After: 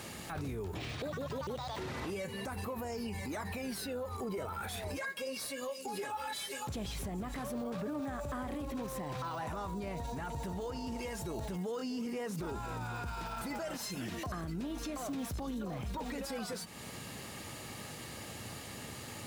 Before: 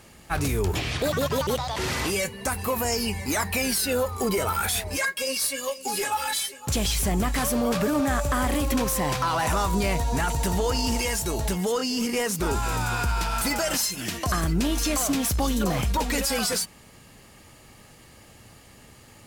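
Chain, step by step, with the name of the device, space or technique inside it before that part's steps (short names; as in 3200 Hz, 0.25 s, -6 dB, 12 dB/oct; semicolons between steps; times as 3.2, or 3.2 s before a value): broadcast voice chain (HPF 85 Hz 12 dB/oct; de-esser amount 100%; compressor 3:1, threshold -42 dBFS, peak gain reduction 15 dB; bell 3800 Hz +4 dB 0.2 oct; limiter -37 dBFS, peak gain reduction 9.5 dB); gain +5.5 dB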